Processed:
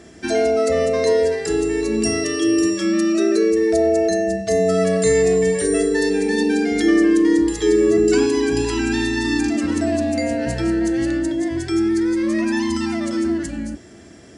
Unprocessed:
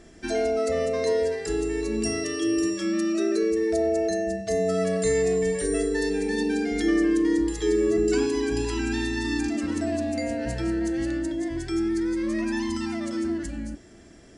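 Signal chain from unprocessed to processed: HPF 64 Hz 24 dB/oct; gain +7 dB

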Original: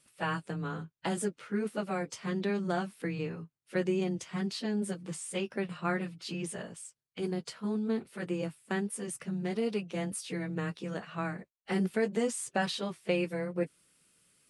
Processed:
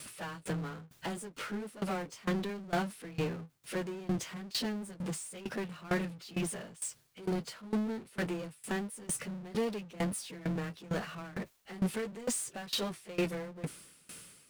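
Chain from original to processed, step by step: power-law curve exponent 0.5; dB-ramp tremolo decaying 2.2 Hz, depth 21 dB; gain -3 dB

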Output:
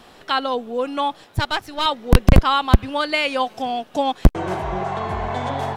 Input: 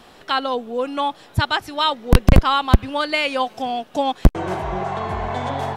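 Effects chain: 1.24–1.86 half-wave gain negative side -7 dB

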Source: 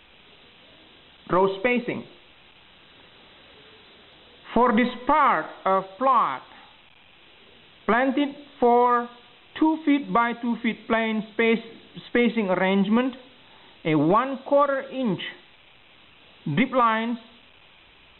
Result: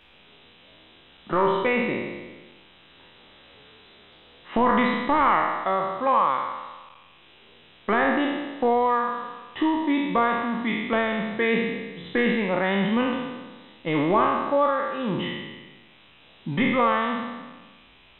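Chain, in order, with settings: spectral trails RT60 1.34 s; gain -4 dB

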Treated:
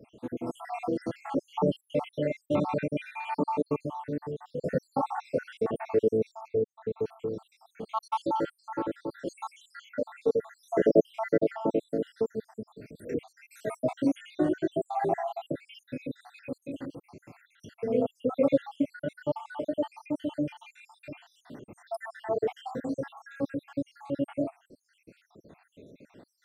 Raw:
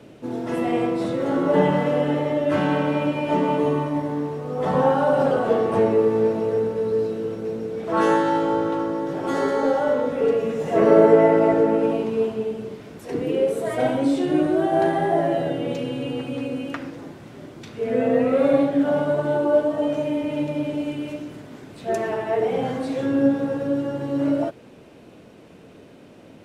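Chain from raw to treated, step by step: random spectral dropouts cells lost 77%; 1.54–2.47 dynamic EQ 1800 Hz, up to +4 dB, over -39 dBFS, Q 0.81; 6.48–7 LPF 2400 Hz 12 dB/oct; gain -4 dB

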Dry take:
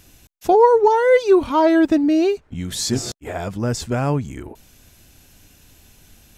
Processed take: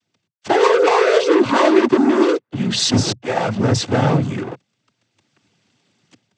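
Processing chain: LPF 5600 Hz 24 dB/oct; sample leveller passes 5; AGC gain up to 12 dB; noise vocoder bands 16; gain -10 dB

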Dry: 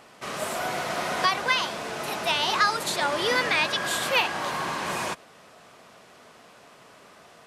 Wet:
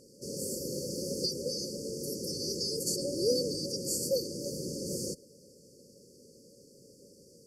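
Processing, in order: FFT band-reject 580–4400 Hz

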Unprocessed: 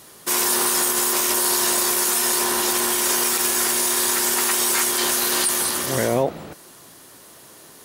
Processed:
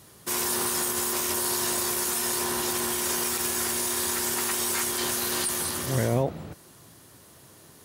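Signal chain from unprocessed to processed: bell 96 Hz +13 dB 1.9 oct; gain -7.5 dB

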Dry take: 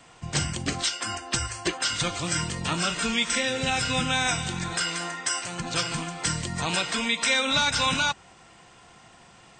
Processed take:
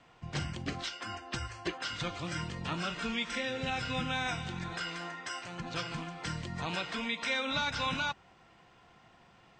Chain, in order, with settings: air absorption 150 m; gain -7 dB

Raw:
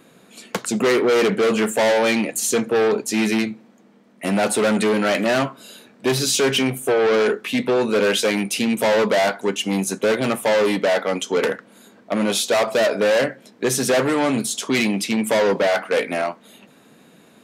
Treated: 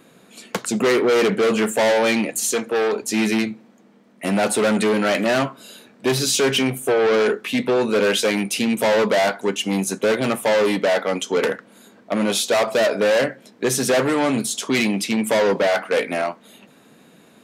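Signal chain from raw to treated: 2.5–3.02 HPF 390 Hz 6 dB/oct

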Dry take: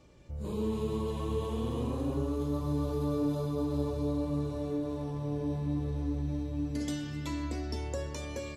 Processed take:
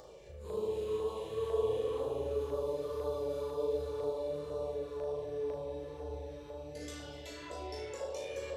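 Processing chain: chorus 1.3 Hz, delay 16 ms, depth 6.9 ms; spring tank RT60 2.9 s, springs 53 ms, chirp 35 ms, DRR -0.5 dB; LFO notch saw down 2 Hz 550–2600 Hz; resonant low shelf 350 Hz -9.5 dB, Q 3; upward compressor, threshold -42 dBFS; flutter echo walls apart 6.4 m, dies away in 0.38 s; gain -2.5 dB

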